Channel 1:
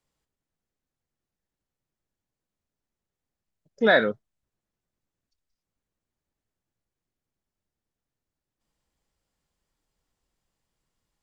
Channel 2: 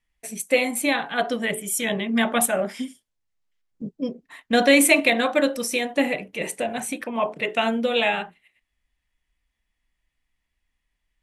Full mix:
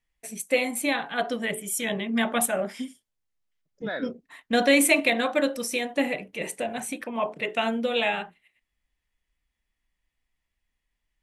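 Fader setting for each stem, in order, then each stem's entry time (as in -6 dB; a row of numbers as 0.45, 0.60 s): -14.0, -3.5 dB; 0.00, 0.00 s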